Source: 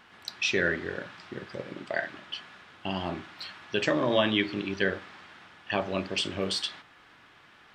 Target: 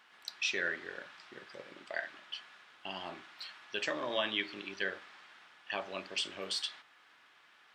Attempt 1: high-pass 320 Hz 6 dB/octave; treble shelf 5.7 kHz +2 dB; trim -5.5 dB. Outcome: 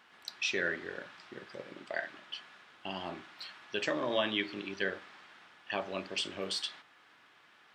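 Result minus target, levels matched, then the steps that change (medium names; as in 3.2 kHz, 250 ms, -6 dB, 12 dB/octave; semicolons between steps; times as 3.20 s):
250 Hz band +5.0 dB
change: high-pass 830 Hz 6 dB/octave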